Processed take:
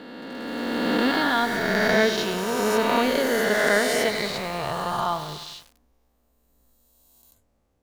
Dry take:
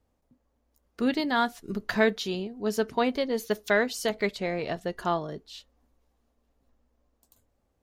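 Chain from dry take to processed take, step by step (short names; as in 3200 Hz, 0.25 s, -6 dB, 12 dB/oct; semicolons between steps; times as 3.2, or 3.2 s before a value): spectral swells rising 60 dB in 2.81 s; 4.09–5.49 graphic EQ 125/250/500/1000/2000/4000 Hz +6/-9/-6/+5/-7/+4 dB; lo-fi delay 98 ms, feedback 80%, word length 6-bit, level -11 dB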